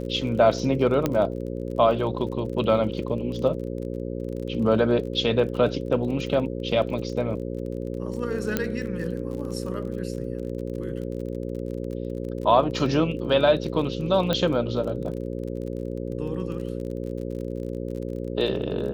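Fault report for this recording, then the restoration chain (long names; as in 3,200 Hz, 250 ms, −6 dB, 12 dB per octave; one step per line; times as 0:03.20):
mains buzz 60 Hz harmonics 9 −31 dBFS
surface crackle 33 per second −34 dBFS
0:01.06: click −10 dBFS
0:08.57: click −9 dBFS
0:14.33: click −11 dBFS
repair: click removal
hum removal 60 Hz, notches 9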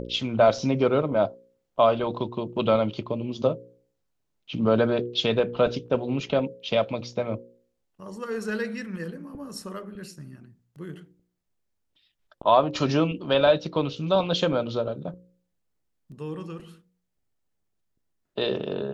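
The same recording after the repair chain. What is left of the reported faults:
none of them is left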